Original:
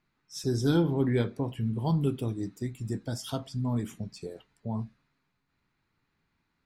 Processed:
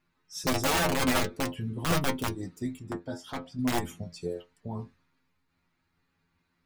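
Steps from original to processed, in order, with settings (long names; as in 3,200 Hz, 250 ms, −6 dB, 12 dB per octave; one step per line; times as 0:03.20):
wrap-around overflow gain 21.5 dB
stiff-string resonator 85 Hz, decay 0.2 s, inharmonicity 0.002
0:02.79–0:03.59: mid-hump overdrive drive 7 dB, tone 1,100 Hz, clips at −28 dBFS
level +8.5 dB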